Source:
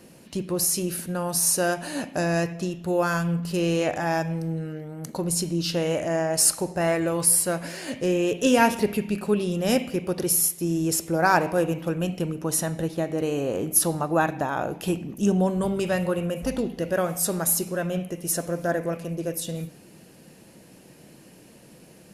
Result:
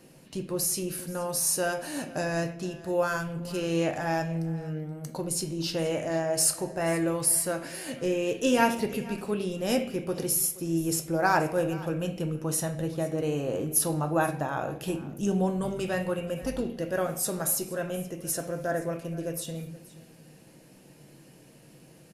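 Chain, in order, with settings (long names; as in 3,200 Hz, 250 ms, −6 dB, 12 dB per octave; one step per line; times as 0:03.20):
single-tap delay 476 ms −19.5 dB
convolution reverb RT60 0.40 s, pre-delay 4 ms, DRR 7 dB
level −5 dB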